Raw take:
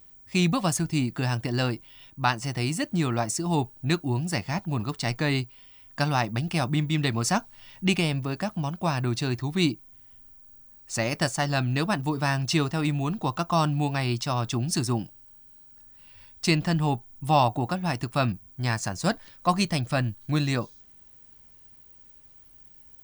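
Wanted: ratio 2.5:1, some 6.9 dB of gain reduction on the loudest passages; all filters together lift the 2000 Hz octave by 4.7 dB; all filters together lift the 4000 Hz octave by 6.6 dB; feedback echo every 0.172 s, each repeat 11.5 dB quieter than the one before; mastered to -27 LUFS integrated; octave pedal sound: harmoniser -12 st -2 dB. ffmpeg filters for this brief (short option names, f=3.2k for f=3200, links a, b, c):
-filter_complex "[0:a]equalizer=f=2k:t=o:g=4,equalizer=f=4k:t=o:g=7,acompressor=threshold=-25dB:ratio=2.5,aecho=1:1:172|344|516:0.266|0.0718|0.0194,asplit=2[a][b];[b]asetrate=22050,aresample=44100,atempo=2,volume=-2dB[c];[a][c]amix=inputs=2:normalize=0"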